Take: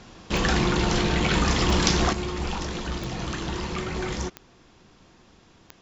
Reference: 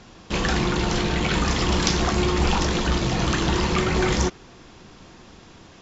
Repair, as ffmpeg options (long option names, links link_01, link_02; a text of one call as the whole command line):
ffmpeg -i in.wav -af "adeclick=threshold=4,asetnsamples=nb_out_samples=441:pad=0,asendcmd='2.13 volume volume 8.5dB',volume=0dB" out.wav